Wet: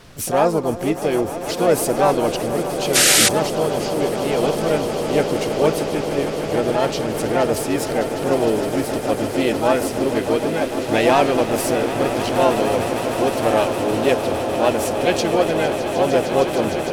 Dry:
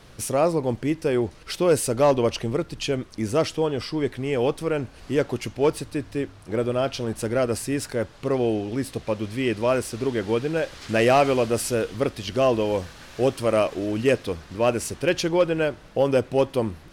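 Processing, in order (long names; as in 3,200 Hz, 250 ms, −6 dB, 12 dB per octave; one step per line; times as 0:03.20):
echo that builds up and dies away 153 ms, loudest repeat 8, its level −13 dB
sound drawn into the spectrogram noise, 0:02.95–0:03.29, 1,200–10,000 Hz −15 dBFS
in parallel at 0 dB: speech leveller 2 s
on the sum: dynamic equaliser 120 Hz, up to −6 dB, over −38 dBFS, Q 4.4
pitch-shifted copies added +5 semitones −5 dB
level −5 dB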